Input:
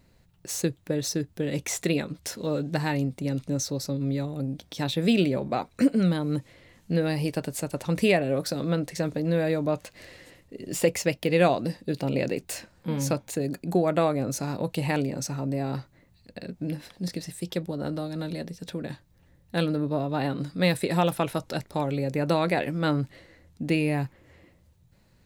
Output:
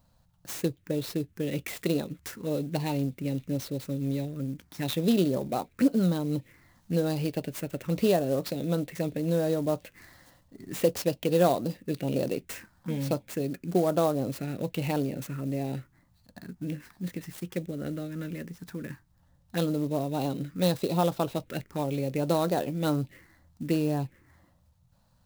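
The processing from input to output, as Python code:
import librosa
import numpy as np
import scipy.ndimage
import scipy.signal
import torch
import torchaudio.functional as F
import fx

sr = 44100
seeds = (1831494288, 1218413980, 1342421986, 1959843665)

y = fx.low_shelf(x, sr, hz=190.0, db=-4.0)
y = fx.env_phaser(y, sr, low_hz=370.0, high_hz=2200.0, full_db=-22.5)
y = fx.clock_jitter(y, sr, seeds[0], jitter_ms=0.028)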